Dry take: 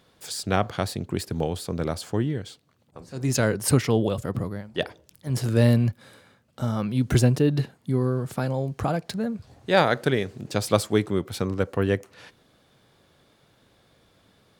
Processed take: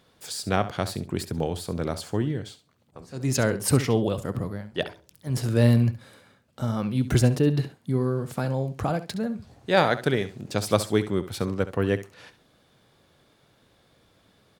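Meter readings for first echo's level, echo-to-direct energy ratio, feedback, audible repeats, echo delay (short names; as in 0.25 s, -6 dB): -13.5 dB, -13.5 dB, 16%, 2, 68 ms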